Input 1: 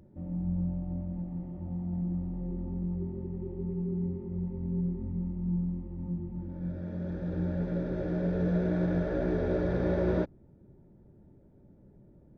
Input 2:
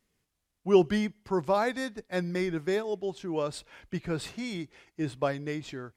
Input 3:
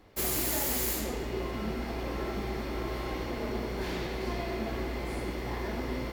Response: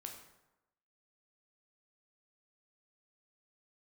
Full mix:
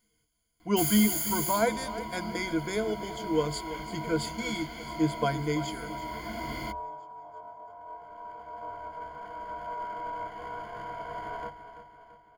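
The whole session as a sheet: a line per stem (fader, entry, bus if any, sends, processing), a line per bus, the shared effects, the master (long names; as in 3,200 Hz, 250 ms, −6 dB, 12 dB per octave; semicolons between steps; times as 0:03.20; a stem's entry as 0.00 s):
−11.0 dB, 1.25 s, no send, echo send −11.5 dB, lower of the sound and its delayed copy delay 0.92 ms; ring modulation 790 Hz
−2.5 dB, 0.00 s, no send, echo send −13.5 dB, no processing
−2.5 dB, 0.60 s, no send, no echo send, parametric band 460 Hz −12.5 dB 0.43 octaves; automatic ducking −7 dB, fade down 1.35 s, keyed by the second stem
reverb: not used
echo: repeating echo 337 ms, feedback 51%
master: EQ curve with evenly spaced ripples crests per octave 1.8, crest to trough 18 dB; high-shelf EQ 5,400 Hz +6.5 dB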